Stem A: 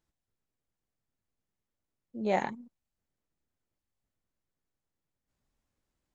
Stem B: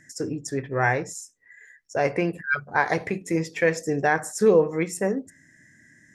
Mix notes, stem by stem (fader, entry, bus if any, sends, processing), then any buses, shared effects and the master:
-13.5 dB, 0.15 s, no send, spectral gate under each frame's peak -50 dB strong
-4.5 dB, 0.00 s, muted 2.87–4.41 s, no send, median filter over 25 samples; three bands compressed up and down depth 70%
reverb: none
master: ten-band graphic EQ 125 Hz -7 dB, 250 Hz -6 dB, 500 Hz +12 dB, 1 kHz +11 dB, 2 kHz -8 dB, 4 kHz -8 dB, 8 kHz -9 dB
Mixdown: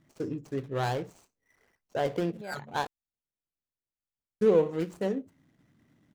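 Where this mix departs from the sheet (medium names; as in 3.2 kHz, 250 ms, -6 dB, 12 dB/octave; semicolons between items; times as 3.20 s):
stem B: missing three bands compressed up and down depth 70%; master: missing ten-band graphic EQ 125 Hz -7 dB, 250 Hz -6 dB, 500 Hz +12 dB, 1 kHz +11 dB, 2 kHz -8 dB, 4 kHz -8 dB, 8 kHz -9 dB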